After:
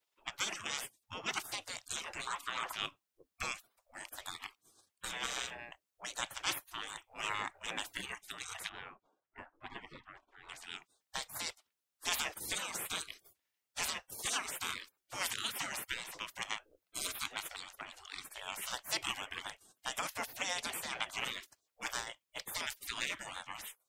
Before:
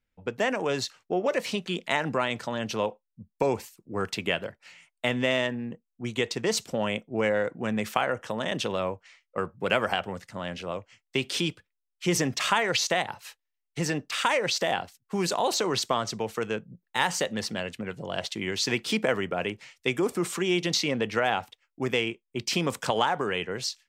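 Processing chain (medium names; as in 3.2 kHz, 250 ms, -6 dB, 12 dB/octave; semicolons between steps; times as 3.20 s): spectral gate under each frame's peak -25 dB weak; 2.27–2.75 s: peaking EQ 1.1 kHz +15 dB 1 oct; 8.69–10.49 s: low-pass 1.4 kHz 12 dB/octave; trim +6.5 dB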